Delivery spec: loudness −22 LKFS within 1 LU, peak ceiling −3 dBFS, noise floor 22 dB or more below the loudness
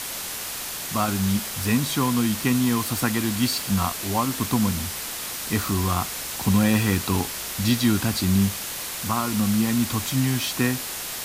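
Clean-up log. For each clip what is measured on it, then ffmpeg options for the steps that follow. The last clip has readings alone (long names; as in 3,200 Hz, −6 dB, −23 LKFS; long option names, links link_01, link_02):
background noise floor −32 dBFS; target noise floor −46 dBFS; integrated loudness −23.5 LKFS; sample peak −8.0 dBFS; target loudness −22.0 LKFS
→ -af "afftdn=noise_reduction=14:noise_floor=-32"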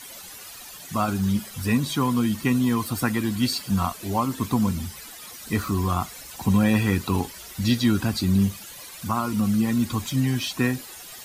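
background noise floor −42 dBFS; target noise floor −47 dBFS
→ -af "afftdn=noise_reduction=6:noise_floor=-42"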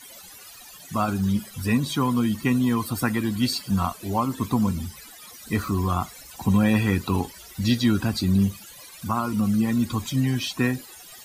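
background noise floor −45 dBFS; target noise floor −47 dBFS
→ -af "afftdn=noise_reduction=6:noise_floor=-45"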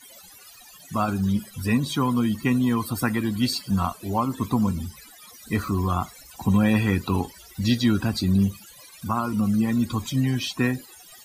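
background noise floor −48 dBFS; integrated loudness −24.5 LKFS; sample peak −8.5 dBFS; target loudness −22.0 LKFS
→ -af "volume=2.5dB"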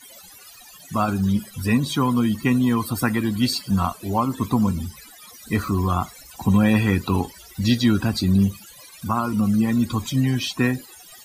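integrated loudness −22.0 LKFS; sample peak −6.0 dBFS; background noise floor −46 dBFS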